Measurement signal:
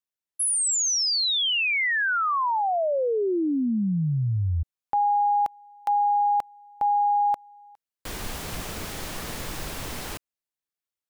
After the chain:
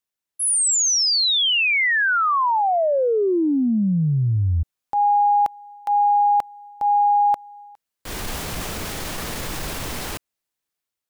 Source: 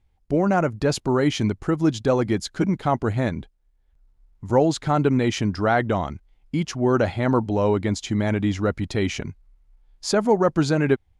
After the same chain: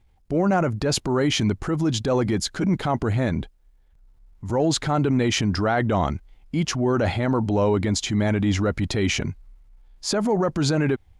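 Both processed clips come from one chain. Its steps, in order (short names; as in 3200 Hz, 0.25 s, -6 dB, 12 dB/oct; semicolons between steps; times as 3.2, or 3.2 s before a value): limiter -17 dBFS; transient shaper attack -5 dB, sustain +3 dB; gain +5 dB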